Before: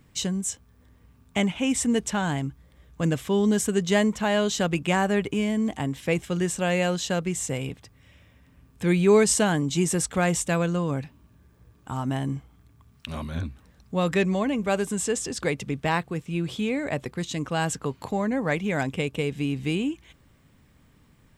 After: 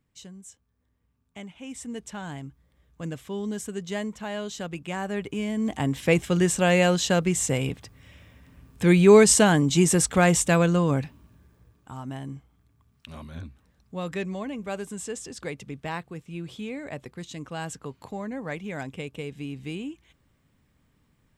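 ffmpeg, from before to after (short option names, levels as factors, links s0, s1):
-af "volume=1.58,afade=t=in:st=1.49:d=0.86:silence=0.421697,afade=t=in:st=4.9:d=0.66:silence=0.473151,afade=t=in:st=5.56:d=0.41:silence=0.446684,afade=t=out:st=10.95:d=0.97:silence=0.251189"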